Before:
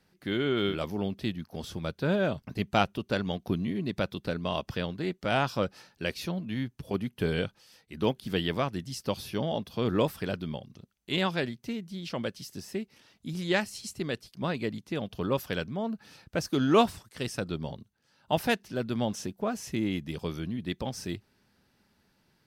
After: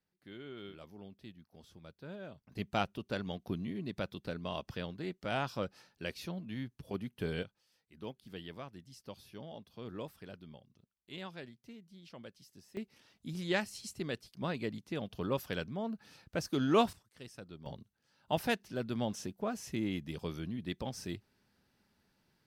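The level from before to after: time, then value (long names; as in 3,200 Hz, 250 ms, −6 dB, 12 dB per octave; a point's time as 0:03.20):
−19.5 dB
from 0:02.52 −8 dB
from 0:07.43 −17 dB
from 0:12.77 −5.5 dB
from 0:16.93 −16.5 dB
from 0:17.66 −5.5 dB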